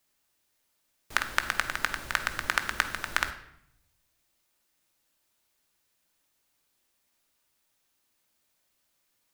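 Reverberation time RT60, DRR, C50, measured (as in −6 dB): 0.75 s, 7.0 dB, 11.5 dB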